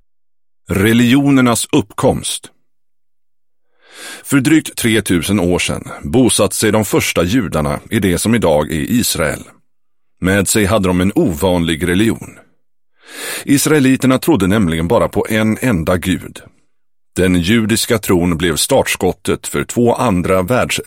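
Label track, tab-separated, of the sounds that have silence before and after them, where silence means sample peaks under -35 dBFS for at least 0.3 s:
0.680000	2.480000	sound
3.910000	9.510000	sound
10.220000	12.410000	sound
13.040000	16.480000	sound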